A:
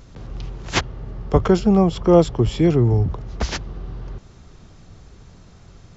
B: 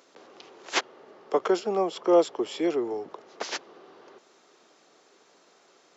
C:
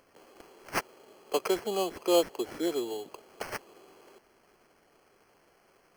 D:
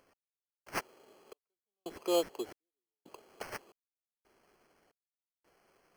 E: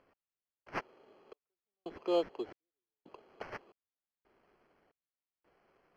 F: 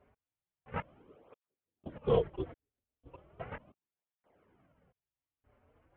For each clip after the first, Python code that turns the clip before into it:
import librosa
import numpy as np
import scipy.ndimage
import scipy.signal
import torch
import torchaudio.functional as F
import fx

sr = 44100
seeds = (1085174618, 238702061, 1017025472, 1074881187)

y1 = scipy.signal.sosfilt(scipy.signal.butter(4, 350.0, 'highpass', fs=sr, output='sos'), x)
y1 = F.gain(torch.from_numpy(y1), -4.5).numpy()
y2 = fx.sample_hold(y1, sr, seeds[0], rate_hz=3700.0, jitter_pct=0)
y2 = F.gain(torch.from_numpy(y2), -4.5).numpy()
y3 = fx.step_gate(y2, sr, bpm=113, pattern='x....xxxx', floor_db=-60.0, edge_ms=4.5)
y3 = F.gain(torch.from_numpy(y3), -5.5).numpy()
y4 = fx.air_absorb(y3, sr, metres=250.0)
y5 = fx.tilt_eq(y4, sr, slope=-2.0)
y5 = fx.lpc_vocoder(y5, sr, seeds[1], excitation='whisper', order=8)
y5 = fx.flanger_cancel(y5, sr, hz=0.36, depth_ms=6.3)
y5 = F.gain(torch.from_numpy(y5), 3.5).numpy()